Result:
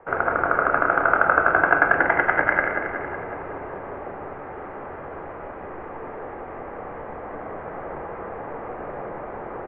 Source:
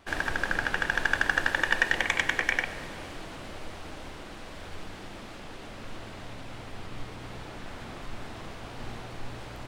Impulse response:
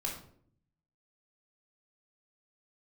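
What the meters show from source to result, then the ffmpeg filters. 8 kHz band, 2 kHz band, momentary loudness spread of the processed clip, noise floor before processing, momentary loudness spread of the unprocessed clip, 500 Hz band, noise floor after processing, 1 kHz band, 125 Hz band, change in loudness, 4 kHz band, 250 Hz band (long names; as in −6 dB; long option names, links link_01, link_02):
below −35 dB, +5.5 dB, 18 LU, −43 dBFS, 18 LU, +14.0 dB, −37 dBFS, +14.0 dB, +1.5 dB, +6.0 dB, below −15 dB, +7.5 dB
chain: -filter_complex "[0:a]highpass=frequency=240:width_type=q:width=0.5412,highpass=frequency=240:width_type=q:width=1.307,lowpass=frequency=2200:width_type=q:width=0.5176,lowpass=frequency=2200:width_type=q:width=0.7071,lowpass=frequency=2200:width_type=q:width=1.932,afreqshift=-210,equalizer=frequency=650:width=0.58:gain=12,bandreject=frequency=50:width_type=h:width=6,bandreject=frequency=100:width_type=h:width=6,bandreject=frequency=150:width_type=h:width=6,aecho=1:1:185|370|555|740|925|1110|1295:0.447|0.259|0.15|0.0872|0.0505|0.0293|0.017,asplit=2[link_01][link_02];[1:a]atrim=start_sample=2205[link_03];[link_02][link_03]afir=irnorm=-1:irlink=0,volume=-3dB[link_04];[link_01][link_04]amix=inputs=2:normalize=0,volume=-3dB"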